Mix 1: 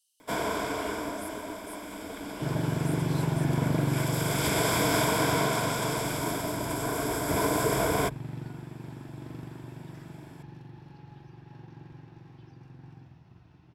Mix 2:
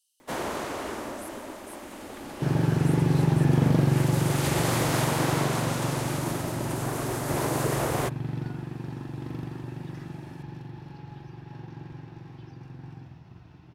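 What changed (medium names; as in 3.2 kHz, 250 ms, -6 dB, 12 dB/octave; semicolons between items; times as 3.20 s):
first sound: remove rippled EQ curve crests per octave 1.7, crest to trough 11 dB; second sound +6.0 dB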